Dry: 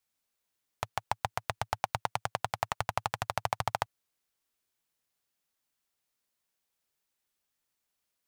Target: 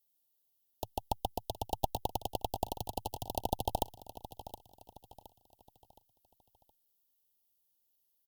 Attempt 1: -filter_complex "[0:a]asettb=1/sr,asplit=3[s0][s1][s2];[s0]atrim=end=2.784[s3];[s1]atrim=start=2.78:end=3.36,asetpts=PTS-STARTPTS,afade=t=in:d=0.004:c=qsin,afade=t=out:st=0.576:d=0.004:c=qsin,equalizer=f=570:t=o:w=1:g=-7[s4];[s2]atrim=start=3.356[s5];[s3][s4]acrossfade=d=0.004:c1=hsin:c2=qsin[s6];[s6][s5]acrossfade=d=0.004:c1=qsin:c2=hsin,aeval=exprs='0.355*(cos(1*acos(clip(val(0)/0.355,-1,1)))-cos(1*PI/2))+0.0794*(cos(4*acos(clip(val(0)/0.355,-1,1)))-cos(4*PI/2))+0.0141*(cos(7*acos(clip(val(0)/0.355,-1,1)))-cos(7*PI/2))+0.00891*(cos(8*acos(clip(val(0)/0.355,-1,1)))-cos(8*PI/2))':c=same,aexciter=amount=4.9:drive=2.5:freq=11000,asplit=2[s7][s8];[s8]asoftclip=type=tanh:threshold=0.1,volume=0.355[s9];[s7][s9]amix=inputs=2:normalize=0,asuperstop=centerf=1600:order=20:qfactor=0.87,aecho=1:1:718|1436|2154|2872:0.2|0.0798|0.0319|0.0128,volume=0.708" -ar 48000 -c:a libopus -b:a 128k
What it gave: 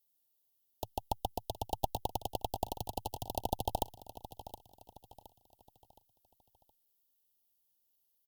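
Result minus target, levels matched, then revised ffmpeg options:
saturation: distortion +15 dB
-filter_complex "[0:a]asettb=1/sr,asplit=3[s0][s1][s2];[s0]atrim=end=2.784[s3];[s1]atrim=start=2.78:end=3.36,asetpts=PTS-STARTPTS,afade=t=in:d=0.004:c=qsin,afade=t=out:st=0.576:d=0.004:c=qsin,equalizer=f=570:t=o:w=1:g=-7[s4];[s2]atrim=start=3.356[s5];[s3][s4]acrossfade=d=0.004:c1=hsin:c2=qsin[s6];[s6][s5]acrossfade=d=0.004:c1=qsin:c2=hsin,aeval=exprs='0.355*(cos(1*acos(clip(val(0)/0.355,-1,1)))-cos(1*PI/2))+0.0794*(cos(4*acos(clip(val(0)/0.355,-1,1)))-cos(4*PI/2))+0.0141*(cos(7*acos(clip(val(0)/0.355,-1,1)))-cos(7*PI/2))+0.00891*(cos(8*acos(clip(val(0)/0.355,-1,1)))-cos(8*PI/2))':c=same,aexciter=amount=4.9:drive=2.5:freq=11000,asplit=2[s7][s8];[s8]asoftclip=type=tanh:threshold=0.398,volume=0.355[s9];[s7][s9]amix=inputs=2:normalize=0,asuperstop=centerf=1600:order=20:qfactor=0.87,aecho=1:1:718|1436|2154|2872:0.2|0.0798|0.0319|0.0128,volume=0.708" -ar 48000 -c:a libopus -b:a 128k

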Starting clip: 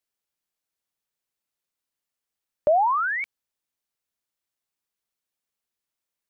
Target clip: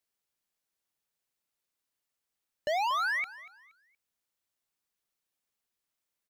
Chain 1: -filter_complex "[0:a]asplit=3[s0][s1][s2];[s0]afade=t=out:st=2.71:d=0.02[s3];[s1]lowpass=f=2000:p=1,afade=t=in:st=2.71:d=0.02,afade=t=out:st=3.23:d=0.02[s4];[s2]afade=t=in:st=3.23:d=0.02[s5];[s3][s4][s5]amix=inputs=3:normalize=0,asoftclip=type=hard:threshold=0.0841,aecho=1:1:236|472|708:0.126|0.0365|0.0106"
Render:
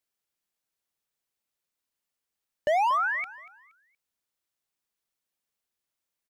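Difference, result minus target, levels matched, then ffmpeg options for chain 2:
hard clipper: distortion -5 dB
-filter_complex "[0:a]asplit=3[s0][s1][s2];[s0]afade=t=out:st=2.71:d=0.02[s3];[s1]lowpass=f=2000:p=1,afade=t=in:st=2.71:d=0.02,afade=t=out:st=3.23:d=0.02[s4];[s2]afade=t=in:st=3.23:d=0.02[s5];[s3][s4][s5]amix=inputs=3:normalize=0,asoftclip=type=hard:threshold=0.0398,aecho=1:1:236|472|708:0.126|0.0365|0.0106"

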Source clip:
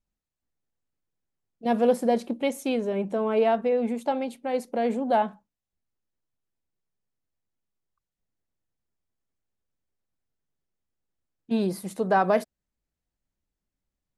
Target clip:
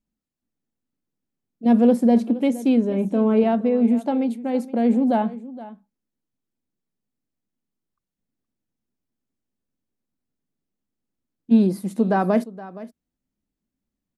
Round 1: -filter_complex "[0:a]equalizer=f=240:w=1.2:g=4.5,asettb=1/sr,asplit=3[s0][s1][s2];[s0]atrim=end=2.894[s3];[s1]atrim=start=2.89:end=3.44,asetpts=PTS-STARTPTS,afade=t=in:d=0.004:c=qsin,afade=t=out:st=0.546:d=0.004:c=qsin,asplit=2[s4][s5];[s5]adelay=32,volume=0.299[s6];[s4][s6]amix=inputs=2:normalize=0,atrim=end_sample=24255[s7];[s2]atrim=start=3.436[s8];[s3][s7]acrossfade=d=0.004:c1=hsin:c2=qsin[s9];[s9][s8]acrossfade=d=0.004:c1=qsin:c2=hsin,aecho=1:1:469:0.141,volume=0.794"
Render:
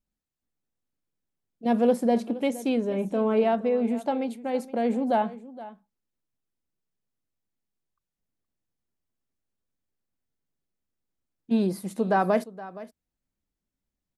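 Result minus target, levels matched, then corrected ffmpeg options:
250 Hz band -2.5 dB
-filter_complex "[0:a]equalizer=f=240:w=1.2:g=13.5,asettb=1/sr,asplit=3[s0][s1][s2];[s0]atrim=end=2.894[s3];[s1]atrim=start=2.89:end=3.44,asetpts=PTS-STARTPTS,afade=t=in:d=0.004:c=qsin,afade=t=out:st=0.546:d=0.004:c=qsin,asplit=2[s4][s5];[s5]adelay=32,volume=0.299[s6];[s4][s6]amix=inputs=2:normalize=0,atrim=end_sample=24255[s7];[s2]atrim=start=3.436[s8];[s3][s7]acrossfade=d=0.004:c1=hsin:c2=qsin[s9];[s9][s8]acrossfade=d=0.004:c1=qsin:c2=hsin,aecho=1:1:469:0.141,volume=0.794"

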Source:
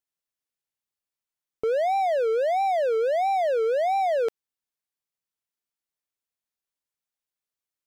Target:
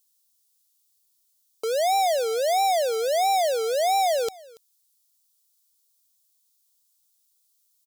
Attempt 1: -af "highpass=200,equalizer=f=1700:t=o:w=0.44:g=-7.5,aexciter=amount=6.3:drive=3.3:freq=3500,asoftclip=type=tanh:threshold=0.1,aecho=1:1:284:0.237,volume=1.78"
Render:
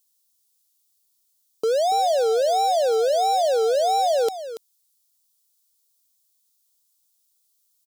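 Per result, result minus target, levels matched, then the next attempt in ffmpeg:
echo-to-direct +10.5 dB; 250 Hz band +6.0 dB
-af "highpass=200,equalizer=f=1700:t=o:w=0.44:g=-7.5,aexciter=amount=6.3:drive=3.3:freq=3500,asoftclip=type=tanh:threshold=0.1,aecho=1:1:284:0.0708,volume=1.78"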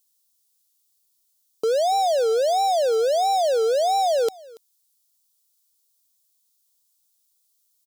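250 Hz band +6.0 dB
-af "highpass=650,equalizer=f=1700:t=o:w=0.44:g=-7.5,aexciter=amount=6.3:drive=3.3:freq=3500,asoftclip=type=tanh:threshold=0.1,aecho=1:1:284:0.0708,volume=1.78"

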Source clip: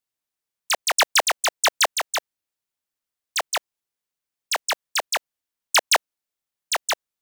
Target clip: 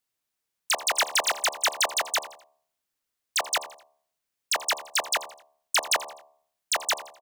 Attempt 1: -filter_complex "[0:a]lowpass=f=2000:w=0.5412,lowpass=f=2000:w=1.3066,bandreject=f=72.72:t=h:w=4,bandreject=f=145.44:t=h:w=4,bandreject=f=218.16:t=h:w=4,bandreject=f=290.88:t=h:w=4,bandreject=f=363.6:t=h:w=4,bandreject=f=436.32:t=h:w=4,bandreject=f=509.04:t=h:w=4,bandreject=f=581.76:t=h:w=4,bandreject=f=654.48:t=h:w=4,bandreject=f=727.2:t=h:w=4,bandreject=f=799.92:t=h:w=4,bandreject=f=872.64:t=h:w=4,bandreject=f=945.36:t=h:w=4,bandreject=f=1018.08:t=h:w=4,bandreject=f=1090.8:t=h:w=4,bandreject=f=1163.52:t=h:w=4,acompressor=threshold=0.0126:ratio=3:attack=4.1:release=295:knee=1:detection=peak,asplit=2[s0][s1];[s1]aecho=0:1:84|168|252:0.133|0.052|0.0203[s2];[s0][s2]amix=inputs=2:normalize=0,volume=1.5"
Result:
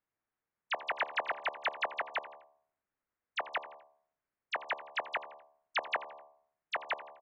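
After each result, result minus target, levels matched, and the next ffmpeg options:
compression: peak gain reduction +7 dB; 2 kHz band +3.5 dB
-filter_complex "[0:a]lowpass=f=2000:w=0.5412,lowpass=f=2000:w=1.3066,bandreject=f=72.72:t=h:w=4,bandreject=f=145.44:t=h:w=4,bandreject=f=218.16:t=h:w=4,bandreject=f=290.88:t=h:w=4,bandreject=f=363.6:t=h:w=4,bandreject=f=436.32:t=h:w=4,bandreject=f=509.04:t=h:w=4,bandreject=f=581.76:t=h:w=4,bandreject=f=654.48:t=h:w=4,bandreject=f=727.2:t=h:w=4,bandreject=f=799.92:t=h:w=4,bandreject=f=872.64:t=h:w=4,bandreject=f=945.36:t=h:w=4,bandreject=f=1018.08:t=h:w=4,bandreject=f=1090.8:t=h:w=4,bandreject=f=1163.52:t=h:w=4,acompressor=threshold=0.0398:ratio=3:attack=4.1:release=295:knee=1:detection=peak,asplit=2[s0][s1];[s1]aecho=0:1:84|168|252:0.133|0.052|0.0203[s2];[s0][s2]amix=inputs=2:normalize=0,volume=1.5"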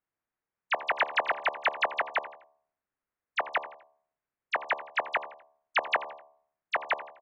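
2 kHz band +4.0 dB
-filter_complex "[0:a]bandreject=f=72.72:t=h:w=4,bandreject=f=145.44:t=h:w=4,bandreject=f=218.16:t=h:w=4,bandreject=f=290.88:t=h:w=4,bandreject=f=363.6:t=h:w=4,bandreject=f=436.32:t=h:w=4,bandreject=f=509.04:t=h:w=4,bandreject=f=581.76:t=h:w=4,bandreject=f=654.48:t=h:w=4,bandreject=f=727.2:t=h:w=4,bandreject=f=799.92:t=h:w=4,bandreject=f=872.64:t=h:w=4,bandreject=f=945.36:t=h:w=4,bandreject=f=1018.08:t=h:w=4,bandreject=f=1090.8:t=h:w=4,bandreject=f=1163.52:t=h:w=4,acompressor=threshold=0.0398:ratio=3:attack=4.1:release=295:knee=1:detection=peak,asplit=2[s0][s1];[s1]aecho=0:1:84|168|252:0.133|0.052|0.0203[s2];[s0][s2]amix=inputs=2:normalize=0,volume=1.5"

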